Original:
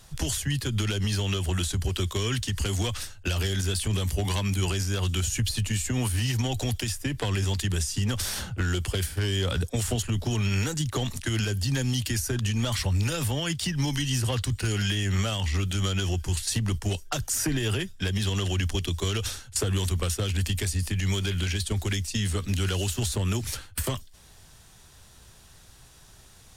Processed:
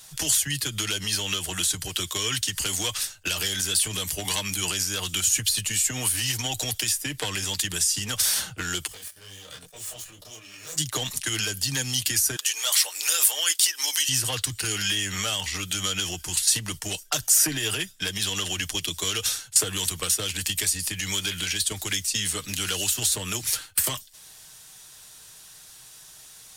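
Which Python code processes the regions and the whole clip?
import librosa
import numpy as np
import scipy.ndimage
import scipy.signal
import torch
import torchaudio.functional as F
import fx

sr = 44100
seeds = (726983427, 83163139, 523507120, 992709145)

y = fx.chain(x, sr, fx.lower_of_two(delay_ms=1.7),
    fx.level_steps(step_db=19),
    fx.detune_double(cents=37), at=(8.87, 10.78))
y = fx.chain(y, sr, fx.bessel_highpass(hz=680.0, order=8),
    fx.high_shelf(hz=7000.0, db=9.0), at=(12.36, 14.09))
y = fx.tilt_eq(y, sr, slope=3.0)
y = y + 0.38 * np.pad(y, (int(6.5 * sr / 1000.0), 0))[:len(y)]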